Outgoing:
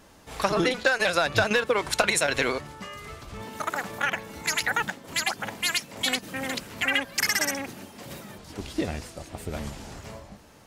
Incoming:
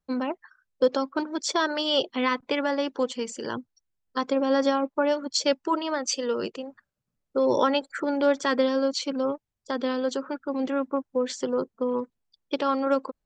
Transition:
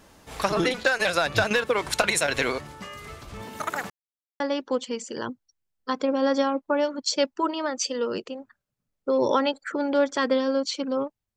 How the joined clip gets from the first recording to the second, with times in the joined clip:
outgoing
3.90–4.40 s: mute
4.40 s: go over to incoming from 2.68 s

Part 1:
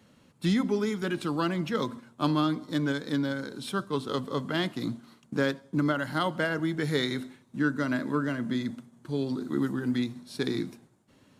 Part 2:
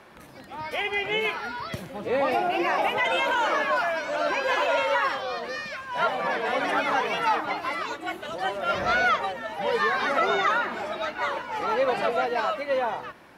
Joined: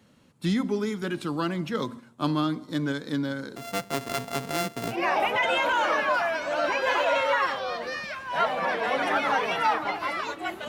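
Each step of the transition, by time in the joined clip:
part 1
3.56–5.04 s: sorted samples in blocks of 64 samples
4.96 s: go over to part 2 from 2.58 s, crossfade 0.16 s

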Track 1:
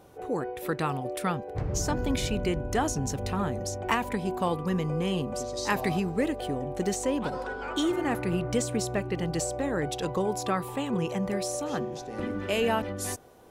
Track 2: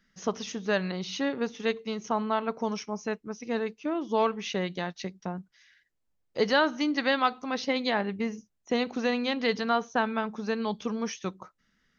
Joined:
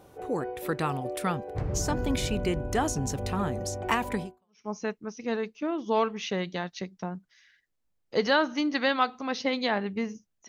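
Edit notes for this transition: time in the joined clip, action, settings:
track 1
4.45 s: go over to track 2 from 2.68 s, crossfade 0.46 s exponential

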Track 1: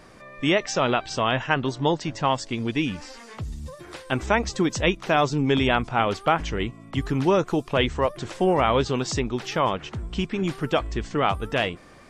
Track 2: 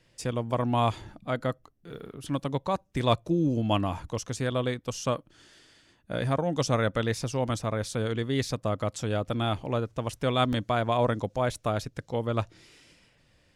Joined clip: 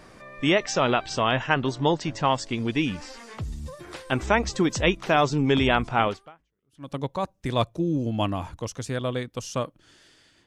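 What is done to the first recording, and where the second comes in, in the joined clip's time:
track 1
6.50 s: go over to track 2 from 2.01 s, crossfade 0.86 s exponential

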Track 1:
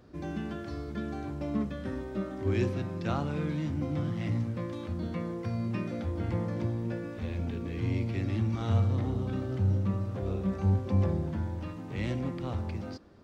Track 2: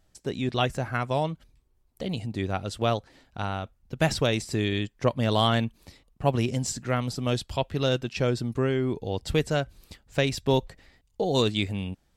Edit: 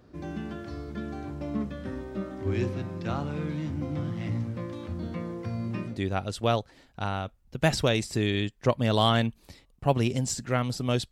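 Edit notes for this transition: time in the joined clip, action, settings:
track 1
5.90 s: go over to track 2 from 2.28 s, crossfade 0.20 s

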